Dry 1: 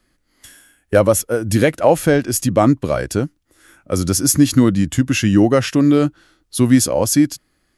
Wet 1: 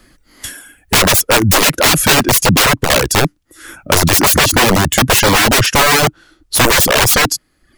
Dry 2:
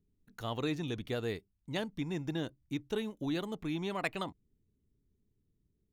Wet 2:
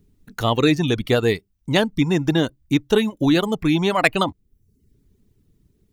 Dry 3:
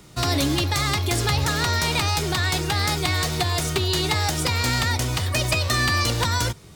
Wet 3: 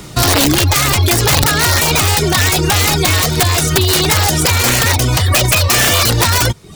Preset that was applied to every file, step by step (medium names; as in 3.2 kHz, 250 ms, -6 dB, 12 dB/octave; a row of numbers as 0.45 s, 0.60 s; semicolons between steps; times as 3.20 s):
integer overflow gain 15 dB; peak limiter -19.5 dBFS; reverb removal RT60 0.6 s; peak normalisation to -2 dBFS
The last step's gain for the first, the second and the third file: +15.5 dB, +18.0 dB, +16.0 dB